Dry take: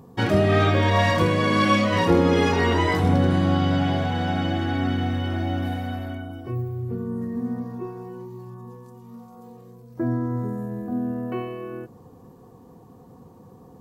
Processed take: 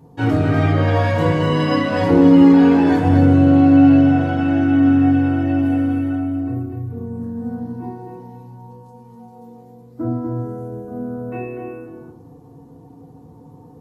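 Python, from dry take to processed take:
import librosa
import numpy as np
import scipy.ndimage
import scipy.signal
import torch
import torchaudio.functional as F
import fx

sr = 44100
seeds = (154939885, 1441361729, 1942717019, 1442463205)

p1 = fx.formant_shift(x, sr, semitones=-2)
p2 = p1 + fx.echo_single(p1, sr, ms=246, db=-6.0, dry=0)
p3 = fx.rev_fdn(p2, sr, rt60_s=0.5, lf_ratio=1.2, hf_ratio=0.35, size_ms=20.0, drr_db=-5.5)
y = p3 * librosa.db_to_amplitude(-6.0)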